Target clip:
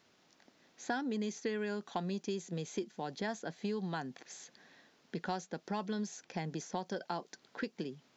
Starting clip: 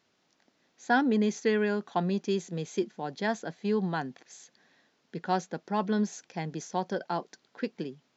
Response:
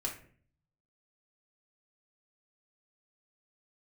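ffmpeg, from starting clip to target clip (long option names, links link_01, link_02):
-filter_complex "[0:a]acrossover=split=2500|6100[link_01][link_02][link_03];[link_01]acompressor=threshold=-40dB:ratio=4[link_04];[link_02]acompressor=threshold=-57dB:ratio=4[link_05];[link_03]acompressor=threshold=-58dB:ratio=4[link_06];[link_04][link_05][link_06]amix=inputs=3:normalize=0,volume=3.5dB"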